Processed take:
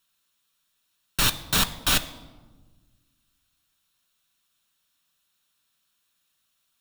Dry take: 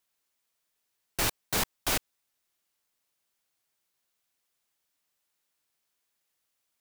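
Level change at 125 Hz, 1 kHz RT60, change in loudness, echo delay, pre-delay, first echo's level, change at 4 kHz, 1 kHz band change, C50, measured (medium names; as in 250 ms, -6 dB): +7.5 dB, 1.2 s, +6.5 dB, no echo, 5 ms, no echo, +9.5 dB, +4.5 dB, 15.5 dB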